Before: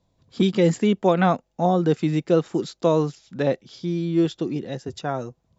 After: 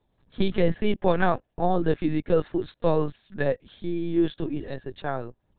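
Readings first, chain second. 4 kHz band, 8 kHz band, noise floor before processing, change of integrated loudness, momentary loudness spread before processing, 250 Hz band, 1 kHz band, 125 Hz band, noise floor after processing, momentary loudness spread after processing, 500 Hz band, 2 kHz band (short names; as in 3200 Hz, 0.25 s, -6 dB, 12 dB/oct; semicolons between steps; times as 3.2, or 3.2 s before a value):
-5.5 dB, n/a, -71 dBFS, -4.0 dB, 10 LU, -4.5 dB, -3.5 dB, -5.5 dB, -73 dBFS, 9 LU, -3.0 dB, 0.0 dB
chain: LPC vocoder at 8 kHz pitch kept; bell 1700 Hz +8.5 dB 0.21 oct; gain -2.5 dB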